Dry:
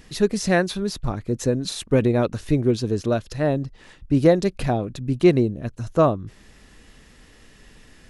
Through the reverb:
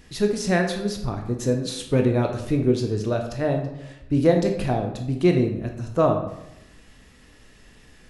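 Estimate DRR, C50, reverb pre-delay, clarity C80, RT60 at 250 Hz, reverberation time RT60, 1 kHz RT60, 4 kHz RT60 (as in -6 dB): 3.0 dB, 6.5 dB, 14 ms, 9.5 dB, 1.0 s, 0.90 s, 0.85 s, 0.55 s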